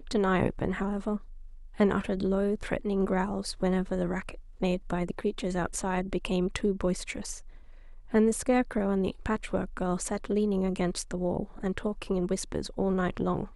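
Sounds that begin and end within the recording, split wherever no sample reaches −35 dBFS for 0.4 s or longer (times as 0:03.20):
0:01.80–0:07.38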